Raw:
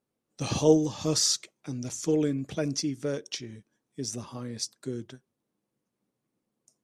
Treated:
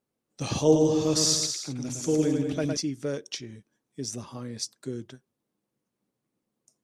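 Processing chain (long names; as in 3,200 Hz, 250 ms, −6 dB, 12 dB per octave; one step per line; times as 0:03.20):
0:00.61–0:02.77: bouncing-ball delay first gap 110 ms, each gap 0.8×, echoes 5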